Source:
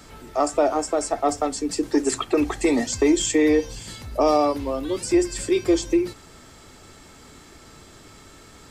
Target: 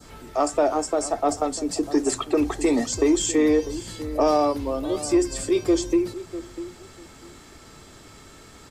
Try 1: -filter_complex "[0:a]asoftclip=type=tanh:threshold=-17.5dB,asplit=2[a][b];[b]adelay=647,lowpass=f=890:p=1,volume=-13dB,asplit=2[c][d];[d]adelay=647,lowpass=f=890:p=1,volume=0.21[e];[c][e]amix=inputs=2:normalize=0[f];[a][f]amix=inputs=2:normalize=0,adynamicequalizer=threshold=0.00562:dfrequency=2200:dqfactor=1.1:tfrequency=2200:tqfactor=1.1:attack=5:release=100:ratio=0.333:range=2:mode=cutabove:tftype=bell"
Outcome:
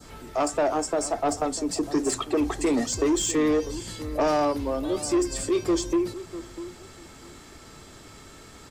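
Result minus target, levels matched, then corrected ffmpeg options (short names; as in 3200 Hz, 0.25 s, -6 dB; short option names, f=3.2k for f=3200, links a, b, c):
soft clip: distortion +13 dB
-filter_complex "[0:a]asoftclip=type=tanh:threshold=-8dB,asplit=2[a][b];[b]adelay=647,lowpass=f=890:p=1,volume=-13dB,asplit=2[c][d];[d]adelay=647,lowpass=f=890:p=1,volume=0.21[e];[c][e]amix=inputs=2:normalize=0[f];[a][f]amix=inputs=2:normalize=0,adynamicequalizer=threshold=0.00562:dfrequency=2200:dqfactor=1.1:tfrequency=2200:tqfactor=1.1:attack=5:release=100:ratio=0.333:range=2:mode=cutabove:tftype=bell"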